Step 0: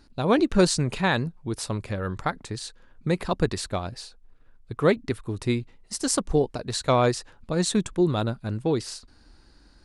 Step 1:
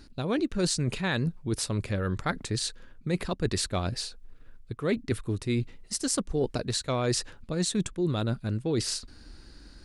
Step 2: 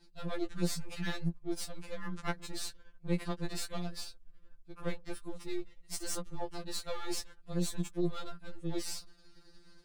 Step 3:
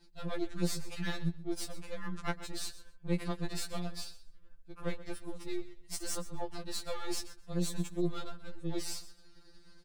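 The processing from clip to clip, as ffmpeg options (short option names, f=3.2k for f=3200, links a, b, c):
-af "equalizer=f=870:t=o:w=1.1:g=-6.5,areverse,acompressor=threshold=-31dB:ratio=6,areverse,volume=6dB"
-af "aeval=exprs='if(lt(val(0),0),0.251*val(0),val(0))':c=same,afftfilt=real='re*2.83*eq(mod(b,8),0)':imag='im*2.83*eq(mod(b,8),0)':win_size=2048:overlap=0.75,volume=-3.5dB"
-af "aecho=1:1:128|256:0.158|0.0269"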